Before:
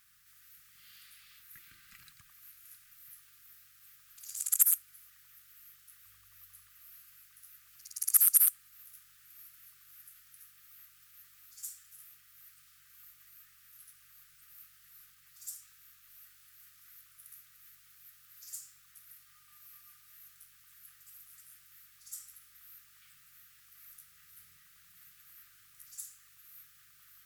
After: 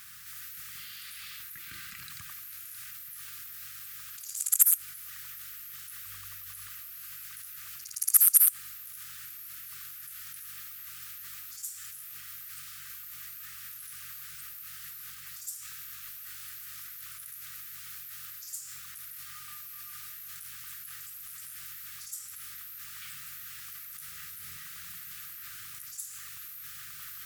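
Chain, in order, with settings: high-pass 57 Hz; band-stop 740 Hz, Q 12; in parallel at +0.5 dB: compressor with a negative ratio -60 dBFS, ratio -1; on the sum: trim +3.5 dB

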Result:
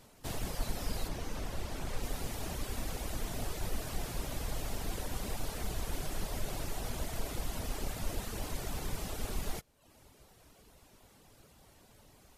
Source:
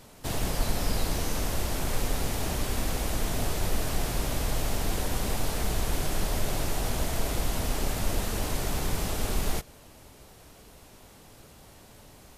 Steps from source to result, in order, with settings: reverb removal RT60 0.67 s; 1.07–2.02 s: treble shelf 5.2 kHz -> 10 kHz -9.5 dB; trim -7 dB

